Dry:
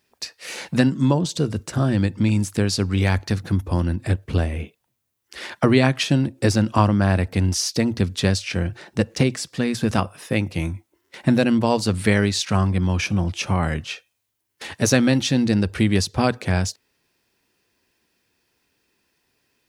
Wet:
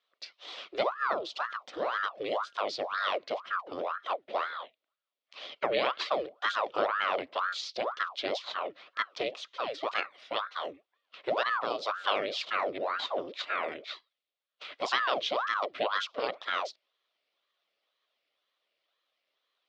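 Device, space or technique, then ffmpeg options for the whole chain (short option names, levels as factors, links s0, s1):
voice changer toy: -af "aeval=exprs='val(0)*sin(2*PI*850*n/s+850*0.8/2*sin(2*PI*2*n/s))':c=same,highpass=560,equalizer=f=580:t=q:w=4:g=5,equalizer=f=880:t=q:w=4:g=-9,equalizer=f=1600:t=q:w=4:g=-7,equalizer=f=3400:t=q:w=4:g=4,lowpass=f=4300:w=0.5412,lowpass=f=4300:w=1.3066,volume=0.531"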